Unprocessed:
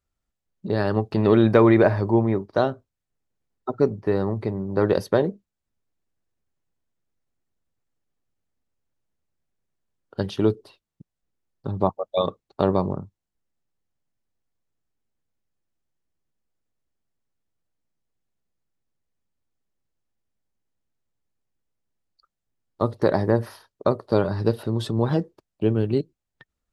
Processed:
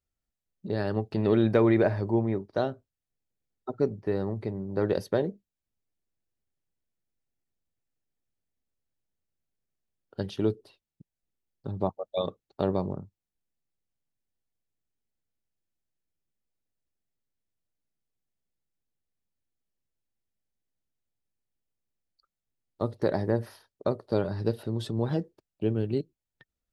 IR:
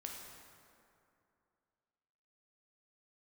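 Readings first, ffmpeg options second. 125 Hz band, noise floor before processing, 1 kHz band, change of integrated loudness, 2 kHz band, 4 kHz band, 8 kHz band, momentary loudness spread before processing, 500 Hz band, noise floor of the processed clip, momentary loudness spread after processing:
−6.0 dB, −84 dBFS, −9.0 dB, −6.5 dB, −7.5 dB, −6.0 dB, can't be measured, 16 LU, −6.5 dB, below −85 dBFS, 16 LU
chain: -af "equalizer=frequency=1100:width_type=o:width=0.65:gain=-5.5,volume=-6dB"

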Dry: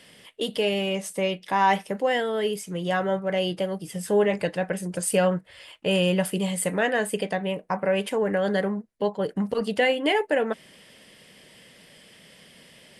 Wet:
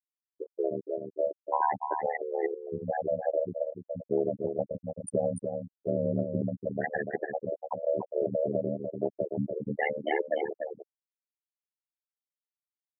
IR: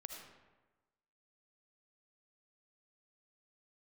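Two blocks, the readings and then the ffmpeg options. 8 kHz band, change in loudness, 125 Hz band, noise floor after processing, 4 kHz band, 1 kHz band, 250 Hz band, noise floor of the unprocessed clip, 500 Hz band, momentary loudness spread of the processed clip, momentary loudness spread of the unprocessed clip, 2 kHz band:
−18.5 dB, −6.5 dB, −6.5 dB, below −85 dBFS, below −25 dB, −6.5 dB, −8.0 dB, −53 dBFS, −5.0 dB, 7 LU, 8 LU, −11.0 dB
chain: -filter_complex "[0:a]afftfilt=real='re*gte(hypot(re,im),0.0631)':imag='im*gte(hypot(re,im),0.0631)':win_size=1024:overlap=0.75,bandreject=frequency=263.6:width_type=h:width=4,bandreject=frequency=527.2:width_type=h:width=4,bandreject=frequency=790.8:width_type=h:width=4,bandreject=frequency=1054.4:width_type=h:width=4,bandreject=frequency=1318:width_type=h:width=4,bandreject=frequency=1581.6:width_type=h:width=4,bandreject=frequency=1845.2:width_type=h:width=4,bandreject=frequency=2108.8:width_type=h:width=4,bandreject=frequency=2372.4:width_type=h:width=4,bandreject=frequency=2636:width_type=h:width=4,bandreject=frequency=2899.6:width_type=h:width=4,bandreject=frequency=3163.2:width_type=h:width=4,afftfilt=real='re*gte(hypot(re,im),0.355)':imag='im*gte(hypot(re,im),0.355)':win_size=1024:overlap=0.75,lowshelf=frequency=230:gain=-9,aecho=1:1:5.2:0.88,acompressor=threshold=-22dB:ratio=3,tremolo=f=75:d=0.974,asplit=2[link_01][link_02];[link_02]aecho=0:1:293:0.501[link_03];[link_01][link_03]amix=inputs=2:normalize=0"

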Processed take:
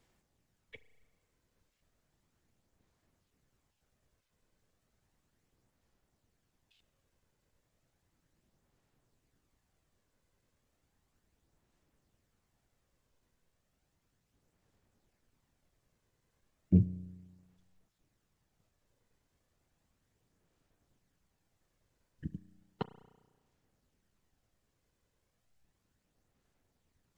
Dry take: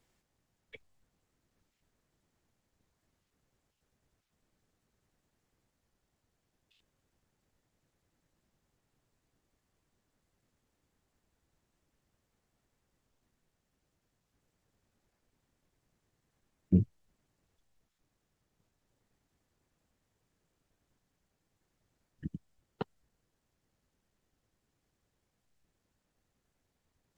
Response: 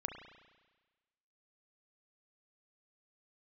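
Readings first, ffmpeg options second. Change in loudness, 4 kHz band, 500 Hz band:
+0.5 dB, can't be measured, −2.0 dB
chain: -filter_complex "[0:a]aphaser=in_gain=1:out_gain=1:delay=2:decay=0.26:speed=0.34:type=sinusoidal,asplit=2[link_01][link_02];[1:a]atrim=start_sample=2205[link_03];[link_02][link_03]afir=irnorm=-1:irlink=0,volume=-8dB[link_04];[link_01][link_04]amix=inputs=2:normalize=0,volume=-2.5dB"

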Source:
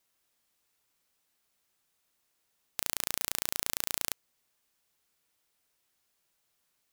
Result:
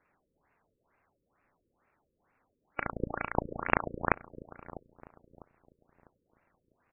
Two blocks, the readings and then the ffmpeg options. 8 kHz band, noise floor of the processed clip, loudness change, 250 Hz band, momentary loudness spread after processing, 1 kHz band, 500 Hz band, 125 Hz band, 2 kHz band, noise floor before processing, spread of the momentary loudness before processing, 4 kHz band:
below −40 dB, −80 dBFS, −1.5 dB, +13.5 dB, 18 LU, +12.0 dB, +13.0 dB, +13.5 dB, +7.0 dB, −77 dBFS, 7 LU, below −20 dB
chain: -filter_complex "[0:a]afftfilt=real='real(if(between(b,1,1012),(2*floor((b-1)/92)+1)*92-b,b),0)':imag='imag(if(between(b,1,1012),(2*floor((b-1)/92)+1)*92-b,b),0)*if(between(b,1,1012),-1,1)':win_size=2048:overlap=0.75,equalizer=frequency=6000:width=2.5:gain=13,bandreject=frequency=60:width_type=h:width=6,bandreject=frequency=120:width_type=h:width=6,bandreject=frequency=180:width_type=h:width=6,bandreject=frequency=240:width_type=h:width=6,bandreject=frequency=300:width_type=h:width=6,bandreject=frequency=360:width_type=h:width=6,bandreject=frequency=420:width_type=h:width=6,bandreject=frequency=480:width_type=h:width=6,acrusher=samples=12:mix=1:aa=0.000001,asplit=2[link_01][link_02];[link_02]adelay=650,lowpass=frequency=1000:poles=1,volume=-13dB,asplit=2[link_03][link_04];[link_04]adelay=650,lowpass=frequency=1000:poles=1,volume=0.37,asplit=2[link_05][link_06];[link_06]adelay=650,lowpass=frequency=1000:poles=1,volume=0.37,asplit=2[link_07][link_08];[link_08]adelay=650,lowpass=frequency=1000:poles=1,volume=0.37[link_09];[link_03][link_05][link_07][link_09]amix=inputs=4:normalize=0[link_10];[link_01][link_10]amix=inputs=2:normalize=0,afftfilt=real='re*lt(b*sr/1024,530*pow(2900/530,0.5+0.5*sin(2*PI*2.2*pts/sr)))':imag='im*lt(b*sr/1024,530*pow(2900/530,0.5+0.5*sin(2*PI*2.2*pts/sr)))':win_size=1024:overlap=0.75"

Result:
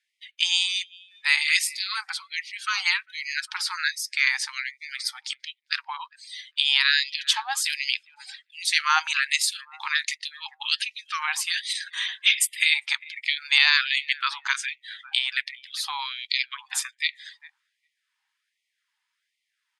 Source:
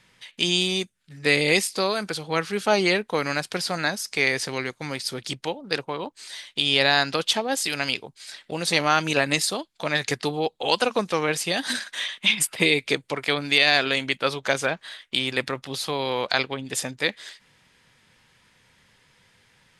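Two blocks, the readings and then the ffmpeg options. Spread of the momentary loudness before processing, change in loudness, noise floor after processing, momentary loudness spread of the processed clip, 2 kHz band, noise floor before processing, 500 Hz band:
11 LU, −0.5 dB, −80 dBFS, 14 LU, +0.5 dB, −63 dBFS, below −40 dB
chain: -filter_complex "[0:a]asplit=2[link_01][link_02];[link_02]adelay=401,lowpass=frequency=1600:poles=1,volume=-16dB,asplit=2[link_03][link_04];[link_04]adelay=401,lowpass=frequency=1600:poles=1,volume=0.47,asplit=2[link_05][link_06];[link_06]adelay=401,lowpass=frequency=1600:poles=1,volume=0.47,asplit=2[link_07][link_08];[link_08]adelay=401,lowpass=frequency=1600:poles=1,volume=0.47[link_09];[link_01][link_03][link_05][link_07][link_09]amix=inputs=5:normalize=0,afftdn=noise_reduction=19:noise_floor=-41,afftfilt=real='re*gte(b*sr/1024,750*pow(1900/750,0.5+0.5*sin(2*PI*1.3*pts/sr)))':imag='im*gte(b*sr/1024,750*pow(1900/750,0.5+0.5*sin(2*PI*1.3*pts/sr)))':win_size=1024:overlap=0.75,volume=1dB"

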